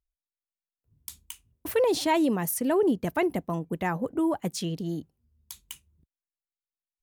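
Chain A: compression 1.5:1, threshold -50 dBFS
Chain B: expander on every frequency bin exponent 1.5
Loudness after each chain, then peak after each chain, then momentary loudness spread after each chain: -37.0 LUFS, -29.0 LUFS; -24.5 dBFS, -15.5 dBFS; 16 LU, 17 LU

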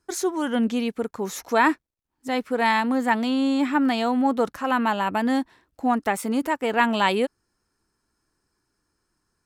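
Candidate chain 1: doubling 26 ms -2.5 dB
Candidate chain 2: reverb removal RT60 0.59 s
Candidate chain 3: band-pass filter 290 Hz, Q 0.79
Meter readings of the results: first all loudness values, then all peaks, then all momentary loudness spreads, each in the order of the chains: -21.0 LUFS, -24.0 LUFS, -26.5 LUFS; -3.0 dBFS, -6.0 dBFS, -13.5 dBFS; 9 LU, 9 LU, 8 LU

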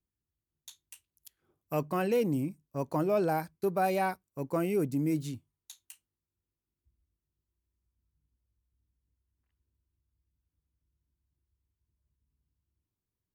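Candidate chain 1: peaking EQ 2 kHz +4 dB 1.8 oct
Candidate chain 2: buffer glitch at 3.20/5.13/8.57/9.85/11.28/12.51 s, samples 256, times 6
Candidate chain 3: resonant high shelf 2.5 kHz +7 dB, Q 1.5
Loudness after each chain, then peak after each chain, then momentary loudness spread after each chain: -30.5 LUFS, -31.0 LUFS, -31.0 LUFS; -16.0 dBFS, -17.5 dBFS, -16.5 dBFS; 12 LU, 12 LU, 18 LU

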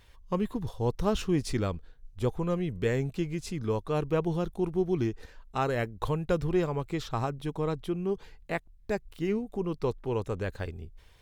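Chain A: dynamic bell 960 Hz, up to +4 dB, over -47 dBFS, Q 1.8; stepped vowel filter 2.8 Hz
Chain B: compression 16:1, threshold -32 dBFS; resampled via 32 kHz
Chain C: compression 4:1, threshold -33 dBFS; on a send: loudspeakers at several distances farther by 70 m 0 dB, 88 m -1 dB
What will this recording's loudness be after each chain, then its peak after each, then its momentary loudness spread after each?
-43.0 LUFS, -38.5 LUFS, -33.5 LUFS; -22.5 dBFS, -21.5 dBFS, -18.0 dBFS; 11 LU, 5 LU, 5 LU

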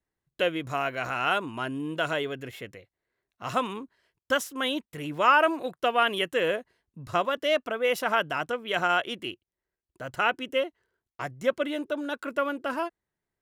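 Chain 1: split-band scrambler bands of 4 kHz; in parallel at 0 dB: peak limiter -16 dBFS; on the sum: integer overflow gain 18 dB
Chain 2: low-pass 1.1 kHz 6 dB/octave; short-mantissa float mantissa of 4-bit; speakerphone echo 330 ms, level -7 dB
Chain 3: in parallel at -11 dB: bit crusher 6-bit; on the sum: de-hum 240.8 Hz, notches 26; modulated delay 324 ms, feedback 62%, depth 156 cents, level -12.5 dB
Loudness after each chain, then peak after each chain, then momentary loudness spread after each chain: -23.5 LUFS, -30.5 LUFS, -25.5 LUFS; -18.0 dBFS, -12.0 dBFS, -5.5 dBFS; 10 LU, 13 LU, 16 LU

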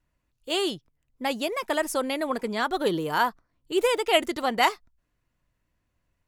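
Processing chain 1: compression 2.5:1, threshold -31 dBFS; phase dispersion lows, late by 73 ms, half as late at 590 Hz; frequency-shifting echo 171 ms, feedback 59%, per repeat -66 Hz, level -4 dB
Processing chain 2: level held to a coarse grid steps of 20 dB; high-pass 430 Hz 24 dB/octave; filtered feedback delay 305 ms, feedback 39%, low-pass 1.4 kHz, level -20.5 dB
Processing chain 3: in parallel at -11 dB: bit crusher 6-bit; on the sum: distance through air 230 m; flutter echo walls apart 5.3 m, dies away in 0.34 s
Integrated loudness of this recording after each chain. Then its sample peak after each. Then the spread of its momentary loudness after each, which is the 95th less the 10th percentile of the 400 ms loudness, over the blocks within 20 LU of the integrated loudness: -31.5 LUFS, -33.5 LUFS, -24.0 LUFS; -15.5 dBFS, -9.5 dBFS, -5.5 dBFS; 8 LU, 20 LU, 8 LU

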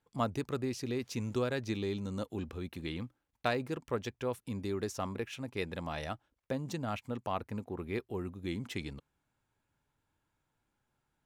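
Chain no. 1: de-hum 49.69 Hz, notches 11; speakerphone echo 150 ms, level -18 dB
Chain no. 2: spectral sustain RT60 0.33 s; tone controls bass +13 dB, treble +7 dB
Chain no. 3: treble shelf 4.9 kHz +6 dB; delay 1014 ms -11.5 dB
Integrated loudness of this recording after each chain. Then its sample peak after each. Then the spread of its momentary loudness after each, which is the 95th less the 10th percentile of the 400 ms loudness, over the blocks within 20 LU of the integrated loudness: -38.0 LUFS, -30.5 LUFS, -37.0 LUFS; -15.5 dBFS, -14.0 dBFS, -14.5 dBFS; 7 LU, 5 LU, 12 LU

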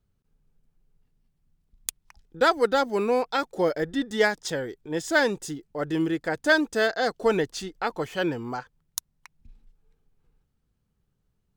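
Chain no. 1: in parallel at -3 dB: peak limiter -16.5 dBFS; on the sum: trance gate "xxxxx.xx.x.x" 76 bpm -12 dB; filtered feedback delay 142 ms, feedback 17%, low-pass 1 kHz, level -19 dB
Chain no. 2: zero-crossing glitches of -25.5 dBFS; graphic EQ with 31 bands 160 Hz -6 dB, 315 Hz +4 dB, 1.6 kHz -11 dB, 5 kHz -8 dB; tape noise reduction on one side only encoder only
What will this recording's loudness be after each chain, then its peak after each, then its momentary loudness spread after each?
-23.5 LUFS, -27.0 LUFS; -6.0 dBFS, -8.0 dBFS; 13 LU, 15 LU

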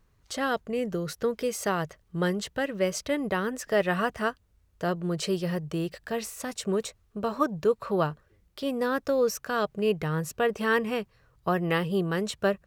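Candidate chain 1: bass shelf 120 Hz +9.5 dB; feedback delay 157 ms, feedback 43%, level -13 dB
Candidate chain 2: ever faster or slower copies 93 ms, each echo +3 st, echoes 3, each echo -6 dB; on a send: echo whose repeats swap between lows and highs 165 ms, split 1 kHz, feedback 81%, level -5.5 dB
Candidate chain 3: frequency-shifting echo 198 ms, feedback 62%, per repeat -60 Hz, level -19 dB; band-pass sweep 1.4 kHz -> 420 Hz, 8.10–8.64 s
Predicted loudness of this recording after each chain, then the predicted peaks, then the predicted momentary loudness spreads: -27.5 LUFS, -26.5 LUFS, -35.0 LUFS; -10.0 dBFS, -9.5 dBFS, -17.5 dBFS; 8 LU, 5 LU, 17 LU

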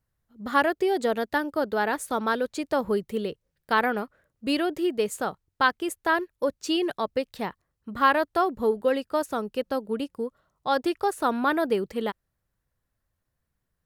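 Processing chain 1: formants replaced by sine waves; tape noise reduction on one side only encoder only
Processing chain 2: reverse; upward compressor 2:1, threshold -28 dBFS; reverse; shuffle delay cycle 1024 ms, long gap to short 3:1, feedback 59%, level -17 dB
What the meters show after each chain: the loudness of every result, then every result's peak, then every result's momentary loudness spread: -27.0 LUFS, -26.5 LUFS; -8.0 dBFS, -8.5 dBFS; 14 LU, 14 LU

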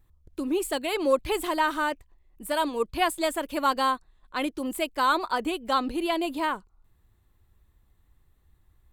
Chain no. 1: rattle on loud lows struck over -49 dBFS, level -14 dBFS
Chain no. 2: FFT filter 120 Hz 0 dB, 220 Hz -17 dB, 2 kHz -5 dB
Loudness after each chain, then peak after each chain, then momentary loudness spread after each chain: -26.0 LUFS, -36.0 LUFS; -8.0 dBFS, -17.5 dBFS; 8 LU, 10 LU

